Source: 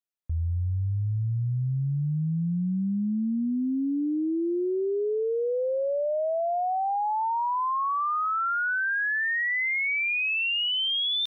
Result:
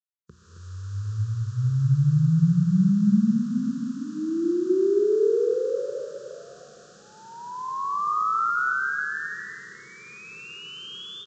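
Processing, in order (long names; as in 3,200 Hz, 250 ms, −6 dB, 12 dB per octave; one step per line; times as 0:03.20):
compressing power law on the bin magnitudes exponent 0.45
high-pass filter 72 Hz 24 dB per octave
high shelf with overshoot 1,900 Hz −11.5 dB, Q 1.5
mains-hum notches 60/120/180/240/300/360 Hz
automatic gain control gain up to 15 dB
Butterworth band-reject 790 Hz, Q 0.8
phaser with its sweep stopped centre 420 Hz, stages 8
slap from a distant wall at 46 metres, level −6 dB
on a send at −7 dB: convolution reverb RT60 2.3 s, pre-delay 104 ms
on the sum: downsampling to 16,000 Hz
level −8 dB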